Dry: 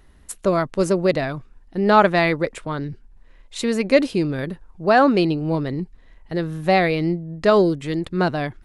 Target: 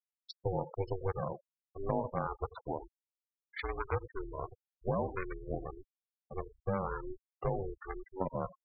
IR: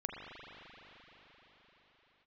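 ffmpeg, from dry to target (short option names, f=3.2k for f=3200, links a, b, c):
-filter_complex "[0:a]highpass=680,asetrate=22696,aresample=44100,atempo=1.94306,acompressor=threshold=-24dB:ratio=8,lowpass=f=3.3k:p=1,asplit=2[a][b];[b]adelay=90,highpass=300,lowpass=3.4k,asoftclip=type=hard:threshold=-25dB,volume=-11dB[c];[a][c]amix=inputs=2:normalize=0,aeval=exprs='val(0)*sin(2*PI*190*n/s)':c=same,afftfilt=real='re*gte(hypot(re,im),0.0282)':imag='im*gte(hypot(re,im),0.0282)':win_size=1024:overlap=0.75,volume=-2.5dB"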